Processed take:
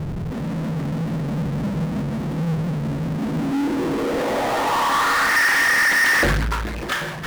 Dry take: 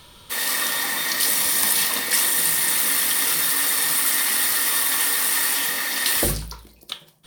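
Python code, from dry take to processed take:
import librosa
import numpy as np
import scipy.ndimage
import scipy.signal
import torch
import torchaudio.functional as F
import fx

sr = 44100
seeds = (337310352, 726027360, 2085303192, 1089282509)

y = fx.filter_sweep_lowpass(x, sr, from_hz=160.0, to_hz=1700.0, start_s=3.06, end_s=5.39, q=3.6)
y = fx.power_curve(y, sr, exponent=0.35)
y = y * 10.0 ** (-3.0 / 20.0)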